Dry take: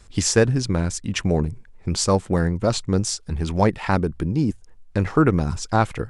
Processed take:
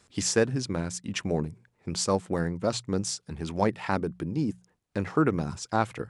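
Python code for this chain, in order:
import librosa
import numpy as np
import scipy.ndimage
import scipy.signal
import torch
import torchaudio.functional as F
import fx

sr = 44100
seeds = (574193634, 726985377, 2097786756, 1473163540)

y = scipy.signal.sosfilt(scipy.signal.butter(2, 130.0, 'highpass', fs=sr, output='sos'), x)
y = fx.hum_notches(y, sr, base_hz=60, count=3)
y = F.gain(torch.from_numpy(y), -6.0).numpy()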